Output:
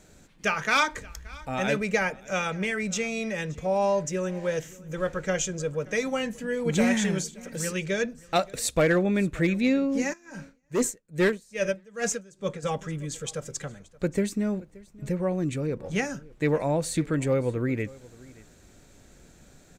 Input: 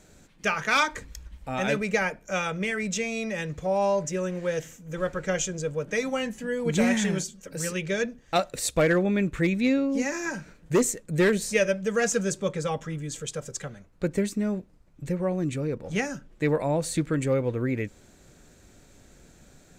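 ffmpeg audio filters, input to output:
ffmpeg -i in.wav -filter_complex "[0:a]aecho=1:1:576:0.075,asplit=3[link_01][link_02][link_03];[link_01]afade=type=out:start_time=10.12:duration=0.02[link_04];[link_02]aeval=exprs='val(0)*pow(10,-25*(0.5-0.5*cos(2*PI*2.4*n/s))/20)':channel_layout=same,afade=type=in:start_time=10.12:duration=0.02,afade=type=out:start_time=12.62:duration=0.02[link_05];[link_03]afade=type=in:start_time=12.62:duration=0.02[link_06];[link_04][link_05][link_06]amix=inputs=3:normalize=0" out.wav

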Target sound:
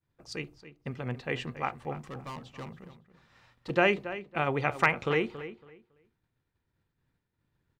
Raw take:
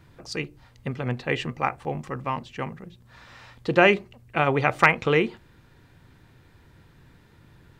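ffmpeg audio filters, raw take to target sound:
ffmpeg -i in.wav -filter_complex "[0:a]asettb=1/sr,asplit=3[link_01][link_02][link_03];[link_01]atrim=end=1.944[link_04];[link_02]atrim=start=1.94:end=3.7,asetpts=PTS-STARTPTS,afade=type=in:duration=0.004:curve=qsin,afade=type=out:start_time=1.756:duration=0.004:curve=qsin,volume=30dB,asoftclip=hard,volume=-30dB[link_05];[link_03]atrim=start=3.696[link_06];[link_04][link_05]acrossfade=duration=0.004:curve1=hsin:curve2=qsin[link_07];[link_07][link_06]acrossfade=duration=0.004:curve1=qsin:curve2=hsin,agate=range=-33dB:threshold=-41dB:ratio=3:detection=peak,asplit=2[link_08][link_09];[link_09]adelay=278,lowpass=frequency=3500:poles=1,volume=-13dB,asplit=2[link_10][link_11];[link_11]adelay=278,lowpass=frequency=3500:poles=1,volume=0.22,asplit=2[link_12][link_13];[link_13]adelay=278,lowpass=frequency=3500:poles=1,volume=0.22[link_14];[link_08][link_10][link_12][link_14]amix=inputs=4:normalize=0,volume=-7dB" out.wav

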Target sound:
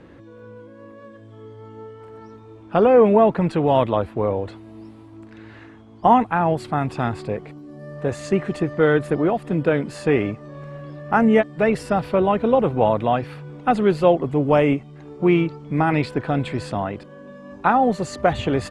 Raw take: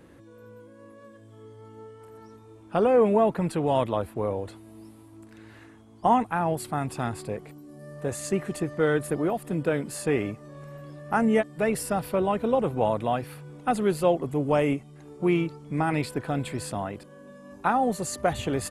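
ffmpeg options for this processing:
ffmpeg -i in.wav -af "lowpass=4100,volume=6.5dB" out.wav

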